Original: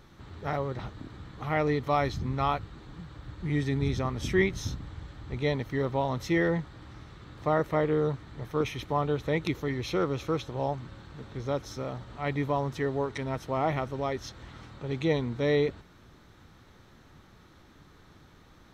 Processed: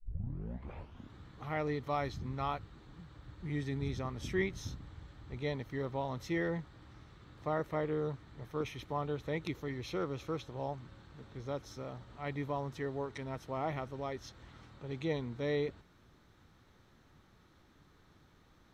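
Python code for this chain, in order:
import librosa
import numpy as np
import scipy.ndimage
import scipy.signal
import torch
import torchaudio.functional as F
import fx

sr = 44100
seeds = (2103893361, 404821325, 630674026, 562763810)

y = fx.tape_start_head(x, sr, length_s=1.17)
y = y * 10.0 ** (-8.5 / 20.0)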